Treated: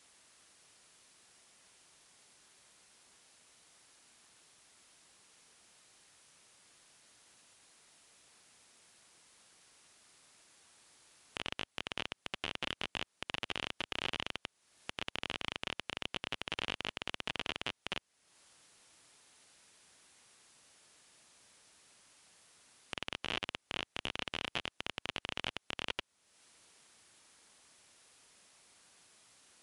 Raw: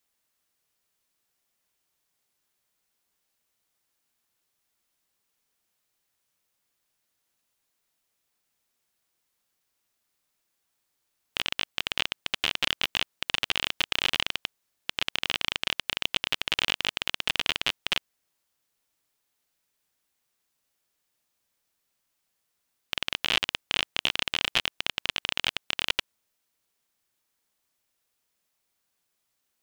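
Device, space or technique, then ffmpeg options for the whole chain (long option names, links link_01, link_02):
podcast mastering chain: -af "highpass=frequency=75:poles=1,deesser=0.65,acompressor=threshold=-57dB:ratio=2.5,alimiter=level_in=9dB:limit=-24dB:level=0:latency=1:release=132,volume=-9dB,volume=17dB" -ar 24000 -c:a libmp3lame -b:a 112k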